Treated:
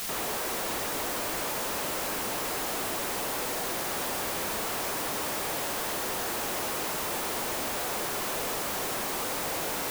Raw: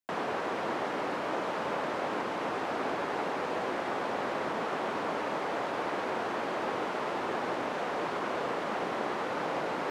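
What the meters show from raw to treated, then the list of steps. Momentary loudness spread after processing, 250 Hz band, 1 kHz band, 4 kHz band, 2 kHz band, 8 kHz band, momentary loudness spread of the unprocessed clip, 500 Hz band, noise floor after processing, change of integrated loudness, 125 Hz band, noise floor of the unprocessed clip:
0 LU, -2.0 dB, -2.0 dB, +9.0 dB, +1.0 dB, +21.0 dB, 0 LU, -2.5 dB, -32 dBFS, +3.0 dB, +2.0 dB, -35 dBFS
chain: requantised 6-bit, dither triangular; wrapped overs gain 29.5 dB; gain +1.5 dB

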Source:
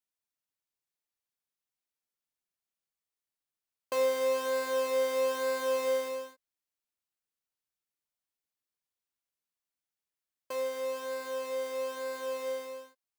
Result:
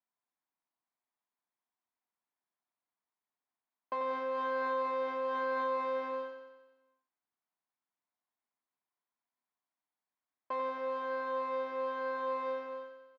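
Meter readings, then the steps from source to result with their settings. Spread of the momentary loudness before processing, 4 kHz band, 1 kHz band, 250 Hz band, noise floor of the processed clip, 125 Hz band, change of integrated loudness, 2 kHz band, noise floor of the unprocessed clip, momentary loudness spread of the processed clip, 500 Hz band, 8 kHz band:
10 LU, -11.5 dB, +4.5 dB, 0.0 dB, under -85 dBFS, n/a, -3.5 dB, -1.5 dB, under -85 dBFS, 8 LU, -5.5 dB, under -25 dB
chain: speaker cabinet 190–3100 Hz, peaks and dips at 240 Hz +5 dB, 500 Hz -6 dB, 710 Hz +6 dB, 1000 Hz +8 dB, 2800 Hz -10 dB; limiter -27 dBFS, peak gain reduction 7 dB; on a send: feedback echo 91 ms, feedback 59%, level -7 dB

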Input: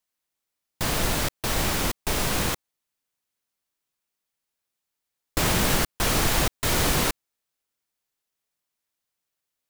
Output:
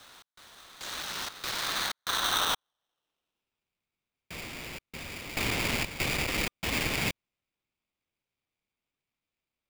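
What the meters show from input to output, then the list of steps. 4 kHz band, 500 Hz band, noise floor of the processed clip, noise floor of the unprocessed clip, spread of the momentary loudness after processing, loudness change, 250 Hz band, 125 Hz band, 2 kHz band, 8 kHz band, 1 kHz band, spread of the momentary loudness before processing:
-2.5 dB, -9.0 dB, under -85 dBFS, -84 dBFS, 14 LU, -6.5 dB, -8.5 dB, -10.0 dB, -2.5 dB, -8.5 dB, -5.5 dB, 7 LU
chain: resonant high shelf 3800 Hz -14 dB, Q 3; in parallel at 0 dB: limiter -19.5 dBFS, peak gain reduction 9 dB; on the sum: reverse echo 1.064 s -13 dB; one-sided clip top -21.5 dBFS; band-pass sweep 6600 Hz -> 1100 Hz, 0.56–3.86; polarity switched at an audio rate 1200 Hz

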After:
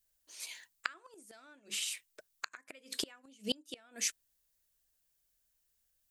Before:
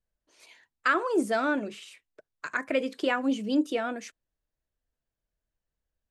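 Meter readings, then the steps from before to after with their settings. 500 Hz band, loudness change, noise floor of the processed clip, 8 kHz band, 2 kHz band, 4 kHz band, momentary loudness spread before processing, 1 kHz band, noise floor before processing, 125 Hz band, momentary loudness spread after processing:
-20.5 dB, -11.5 dB, -78 dBFS, +9.5 dB, -14.0 dB, +1.5 dB, 14 LU, -20.0 dB, under -85 dBFS, n/a, 19 LU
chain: flipped gate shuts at -21 dBFS, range -31 dB; pre-emphasis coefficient 0.9; gain +15.5 dB

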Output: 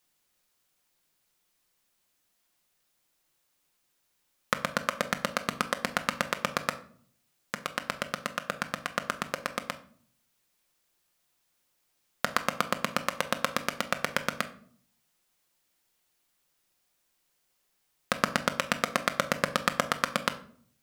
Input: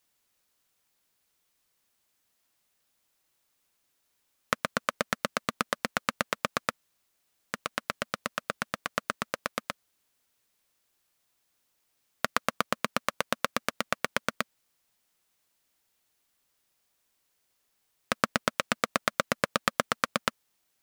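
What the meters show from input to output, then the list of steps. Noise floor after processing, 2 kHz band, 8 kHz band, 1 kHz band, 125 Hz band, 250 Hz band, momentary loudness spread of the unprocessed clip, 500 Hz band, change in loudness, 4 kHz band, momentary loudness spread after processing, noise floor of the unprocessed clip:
-75 dBFS, +0.5 dB, +0.5 dB, +0.5 dB, +2.0 dB, +1.0 dB, 7 LU, +0.5 dB, +0.5 dB, +0.5 dB, 7 LU, -75 dBFS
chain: shoebox room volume 680 m³, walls furnished, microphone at 0.91 m

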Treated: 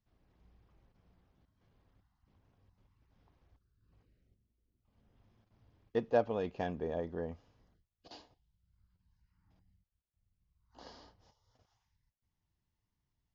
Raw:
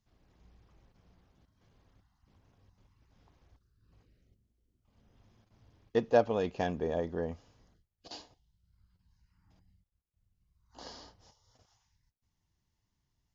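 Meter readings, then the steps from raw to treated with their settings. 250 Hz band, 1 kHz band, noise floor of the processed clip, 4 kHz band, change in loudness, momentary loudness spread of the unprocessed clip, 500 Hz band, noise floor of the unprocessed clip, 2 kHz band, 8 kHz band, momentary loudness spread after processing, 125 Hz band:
-4.0 dB, -4.5 dB, under -85 dBFS, -7.5 dB, -3.5 dB, 22 LU, -4.5 dB, -82 dBFS, -5.0 dB, n/a, 24 LU, -4.0 dB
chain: air absorption 120 m; gain -4 dB

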